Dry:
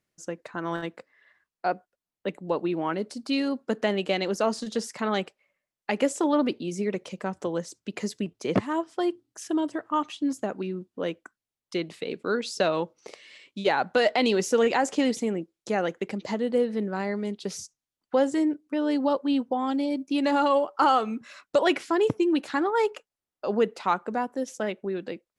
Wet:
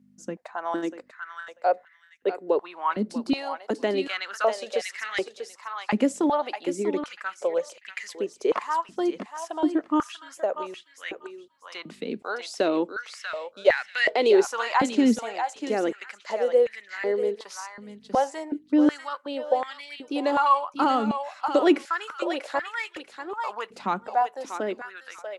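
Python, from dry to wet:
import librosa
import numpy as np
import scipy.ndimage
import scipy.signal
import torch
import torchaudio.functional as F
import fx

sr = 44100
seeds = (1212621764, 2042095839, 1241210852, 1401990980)

y = fx.add_hum(x, sr, base_hz=50, snr_db=27)
y = fx.echo_thinned(y, sr, ms=641, feedback_pct=22, hz=1000.0, wet_db=-5.5)
y = fx.filter_held_highpass(y, sr, hz=2.7, low_hz=220.0, high_hz=1900.0)
y = y * librosa.db_to_amplitude(-3.0)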